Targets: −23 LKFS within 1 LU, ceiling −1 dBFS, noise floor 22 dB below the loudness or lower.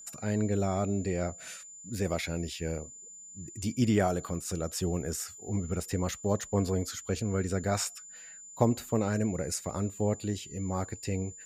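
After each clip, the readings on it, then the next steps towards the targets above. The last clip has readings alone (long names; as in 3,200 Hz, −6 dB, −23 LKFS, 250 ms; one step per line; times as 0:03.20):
interfering tone 7,100 Hz; level of the tone −46 dBFS; integrated loudness −31.5 LKFS; sample peak −11.0 dBFS; target loudness −23.0 LKFS
→ notch filter 7,100 Hz, Q 30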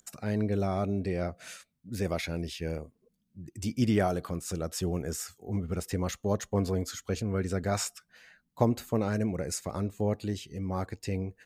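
interfering tone none found; integrated loudness −32.0 LKFS; sample peak −11.0 dBFS; target loudness −23.0 LKFS
→ level +9 dB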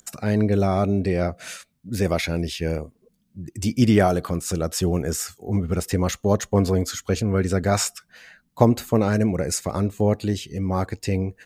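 integrated loudness −23.0 LKFS; sample peak −2.0 dBFS; background noise floor −67 dBFS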